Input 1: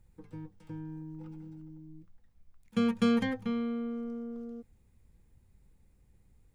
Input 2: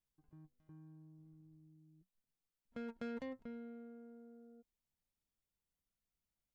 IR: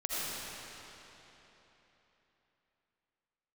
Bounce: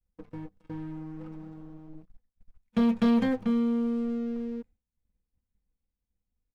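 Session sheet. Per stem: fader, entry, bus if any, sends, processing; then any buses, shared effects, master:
−3.0 dB, 0.00 s, no send, downward expander −51 dBFS
−10.0 dB, 3.3 ms, no send, no processing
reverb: not used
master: low-pass filter 3,100 Hz 6 dB per octave; comb filter 4 ms, depth 47%; leveller curve on the samples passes 2

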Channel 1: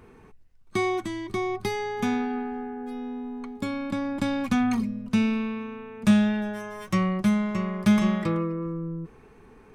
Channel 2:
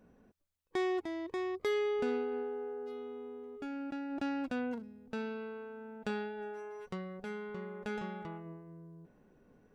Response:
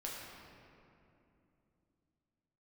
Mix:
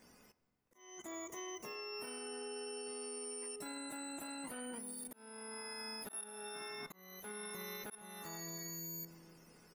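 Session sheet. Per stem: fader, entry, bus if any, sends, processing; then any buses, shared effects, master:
−2.0 dB, 0.00 s, send −13.5 dB, frequency axis turned over on the octave scale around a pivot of 1,500 Hz; output level in coarse steps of 22 dB
−2.0 dB, 2 ms, polarity flipped, send −15.5 dB, parametric band 1,000 Hz +6.5 dB 2.2 octaves; compressor whose output falls as the input rises −35 dBFS, ratio −1; tuned comb filter 83 Hz, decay 2 s, harmonics all, mix 50%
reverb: on, RT60 2.8 s, pre-delay 6 ms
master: volume swells 708 ms; brickwall limiter −37 dBFS, peak gain reduction 8.5 dB

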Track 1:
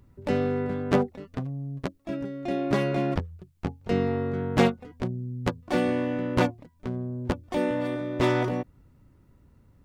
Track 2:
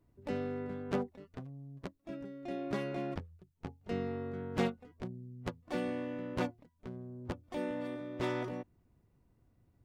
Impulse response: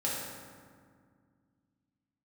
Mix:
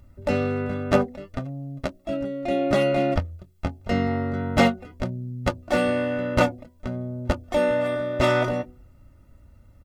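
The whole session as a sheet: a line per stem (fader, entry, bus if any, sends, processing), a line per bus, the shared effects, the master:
+2.5 dB, 0.00 s, no send, comb filter 1.5 ms, depth 58%
0.0 dB, 24 ms, polarity flipped, no send, hum removal 62.09 Hz, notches 12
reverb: not used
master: comb filter 3.3 ms, depth 51%

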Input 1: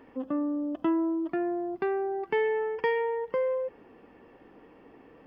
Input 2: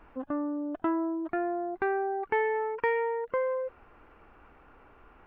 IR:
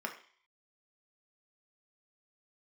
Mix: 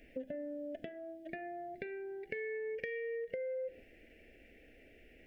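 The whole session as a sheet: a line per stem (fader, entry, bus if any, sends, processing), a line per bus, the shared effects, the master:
−2.5 dB, 0.00 s, no send, noise gate −46 dBFS, range −11 dB; downward compressor, threshold −36 dBFS, peak gain reduction 13.5 dB
−4.5 dB, 0.00 s, send −7 dB, high-shelf EQ 2,000 Hz +11 dB; downward compressor, threshold −30 dBFS, peak gain reduction 10.5 dB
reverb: on, RT60 0.50 s, pre-delay 3 ms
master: Chebyshev band-stop filter 630–1,900 Hz, order 3; downward compressor, threshold −37 dBFS, peak gain reduction 8 dB

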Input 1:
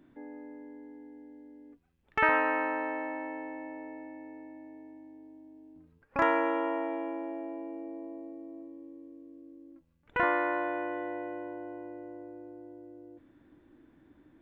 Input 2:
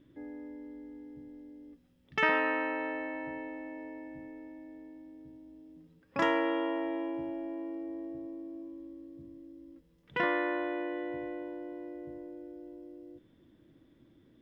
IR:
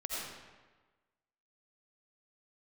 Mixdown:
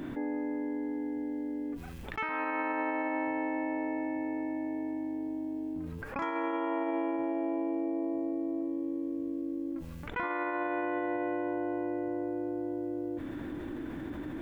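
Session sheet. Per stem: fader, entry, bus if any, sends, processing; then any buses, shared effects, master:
−5.5 dB, 0.00 s, no send, envelope flattener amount 70%
−8.5 dB, 0.00 s, no send, no processing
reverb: not used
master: brickwall limiter −23.5 dBFS, peak gain reduction 9.5 dB

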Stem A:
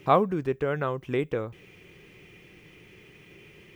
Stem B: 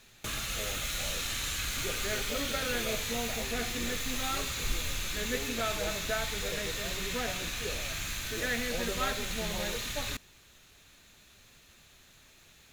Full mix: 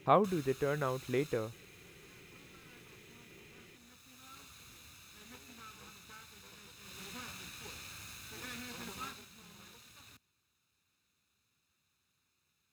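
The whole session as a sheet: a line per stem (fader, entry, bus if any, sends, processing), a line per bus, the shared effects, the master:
−6.0 dB, 0.00 s, no send, no processing
0:01.31 −9 dB → 0:01.61 −18.5 dB → 0:06.76 −18.5 dB → 0:06.99 −10.5 dB → 0:09.05 −10.5 dB → 0:09.31 −19.5 dB, 0.00 s, no send, lower of the sound and its delayed copy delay 0.78 ms; high-pass filter 73 Hz 24 dB per octave; automatic ducking −7 dB, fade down 0.60 s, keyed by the first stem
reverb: not used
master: no processing

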